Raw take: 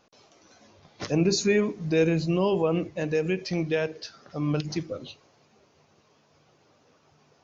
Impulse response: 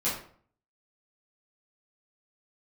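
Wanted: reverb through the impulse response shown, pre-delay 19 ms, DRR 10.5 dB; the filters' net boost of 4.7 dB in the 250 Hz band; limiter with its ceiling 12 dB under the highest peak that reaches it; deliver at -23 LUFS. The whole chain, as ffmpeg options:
-filter_complex "[0:a]equalizer=f=250:t=o:g=7.5,alimiter=limit=-21dB:level=0:latency=1,asplit=2[a][b];[1:a]atrim=start_sample=2205,adelay=19[c];[b][c]afir=irnorm=-1:irlink=0,volume=-19dB[d];[a][d]amix=inputs=2:normalize=0,volume=6.5dB"

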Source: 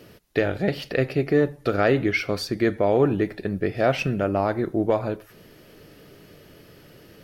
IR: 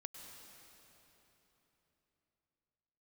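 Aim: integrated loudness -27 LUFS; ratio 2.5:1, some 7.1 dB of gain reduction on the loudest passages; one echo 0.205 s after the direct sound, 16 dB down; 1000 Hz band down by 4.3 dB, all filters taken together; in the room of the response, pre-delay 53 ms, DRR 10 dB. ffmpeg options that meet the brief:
-filter_complex "[0:a]equalizer=f=1k:t=o:g=-7,acompressor=threshold=-27dB:ratio=2.5,aecho=1:1:205:0.158,asplit=2[a][b];[1:a]atrim=start_sample=2205,adelay=53[c];[b][c]afir=irnorm=-1:irlink=0,volume=-6dB[d];[a][d]amix=inputs=2:normalize=0,volume=2.5dB"

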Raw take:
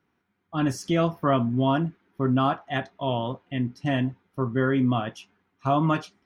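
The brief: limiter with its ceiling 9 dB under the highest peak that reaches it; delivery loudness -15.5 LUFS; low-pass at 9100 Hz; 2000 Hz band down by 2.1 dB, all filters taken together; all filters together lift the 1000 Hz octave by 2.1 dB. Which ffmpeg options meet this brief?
-af "lowpass=9.1k,equalizer=f=1k:t=o:g=4,equalizer=f=2k:t=o:g=-4.5,volume=14.5dB,alimiter=limit=-4.5dB:level=0:latency=1"

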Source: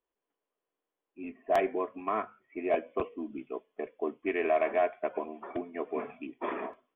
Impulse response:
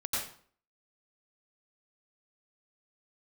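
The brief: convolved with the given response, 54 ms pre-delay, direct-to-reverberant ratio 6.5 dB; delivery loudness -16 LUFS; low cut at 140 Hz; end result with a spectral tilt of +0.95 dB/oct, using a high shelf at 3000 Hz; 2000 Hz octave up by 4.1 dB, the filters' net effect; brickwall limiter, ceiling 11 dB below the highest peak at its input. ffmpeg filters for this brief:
-filter_complex "[0:a]highpass=140,equalizer=f=2k:t=o:g=8,highshelf=f=3k:g=-8.5,alimiter=level_in=4dB:limit=-24dB:level=0:latency=1,volume=-4dB,asplit=2[a][b];[1:a]atrim=start_sample=2205,adelay=54[c];[b][c]afir=irnorm=-1:irlink=0,volume=-12dB[d];[a][d]amix=inputs=2:normalize=0,volume=23dB"

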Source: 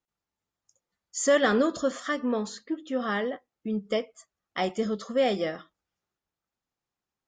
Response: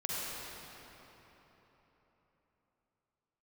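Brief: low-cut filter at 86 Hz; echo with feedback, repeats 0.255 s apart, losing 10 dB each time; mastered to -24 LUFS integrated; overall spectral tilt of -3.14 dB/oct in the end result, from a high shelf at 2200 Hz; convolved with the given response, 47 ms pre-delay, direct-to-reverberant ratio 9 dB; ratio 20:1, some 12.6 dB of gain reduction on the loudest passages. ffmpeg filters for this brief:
-filter_complex "[0:a]highpass=86,highshelf=f=2.2k:g=3,acompressor=threshold=-29dB:ratio=20,aecho=1:1:255|510|765|1020:0.316|0.101|0.0324|0.0104,asplit=2[a][b];[1:a]atrim=start_sample=2205,adelay=47[c];[b][c]afir=irnorm=-1:irlink=0,volume=-14dB[d];[a][d]amix=inputs=2:normalize=0,volume=10.5dB"

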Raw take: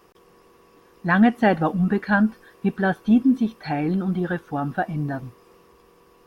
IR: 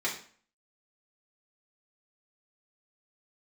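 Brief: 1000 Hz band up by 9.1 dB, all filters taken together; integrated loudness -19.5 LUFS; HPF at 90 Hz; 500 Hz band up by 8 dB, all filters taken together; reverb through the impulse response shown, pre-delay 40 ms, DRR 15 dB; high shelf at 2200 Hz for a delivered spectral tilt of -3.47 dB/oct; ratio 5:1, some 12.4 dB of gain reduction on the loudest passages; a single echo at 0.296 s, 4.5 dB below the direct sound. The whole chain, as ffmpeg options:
-filter_complex "[0:a]highpass=90,equalizer=f=500:t=o:g=7.5,equalizer=f=1k:t=o:g=8.5,highshelf=f=2.2k:g=4.5,acompressor=threshold=-21dB:ratio=5,aecho=1:1:296:0.596,asplit=2[a][b];[1:a]atrim=start_sample=2205,adelay=40[c];[b][c]afir=irnorm=-1:irlink=0,volume=-22.5dB[d];[a][d]amix=inputs=2:normalize=0,volume=5.5dB"

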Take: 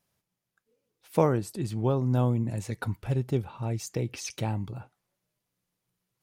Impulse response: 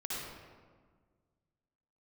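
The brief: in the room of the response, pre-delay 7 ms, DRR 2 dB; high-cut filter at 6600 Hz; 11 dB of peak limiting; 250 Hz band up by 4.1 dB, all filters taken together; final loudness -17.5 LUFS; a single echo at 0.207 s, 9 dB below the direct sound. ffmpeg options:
-filter_complex "[0:a]lowpass=6.6k,equalizer=f=250:t=o:g=5,alimiter=limit=-18dB:level=0:latency=1,aecho=1:1:207:0.355,asplit=2[a][b];[1:a]atrim=start_sample=2205,adelay=7[c];[b][c]afir=irnorm=-1:irlink=0,volume=-5dB[d];[a][d]amix=inputs=2:normalize=0,volume=10dB"

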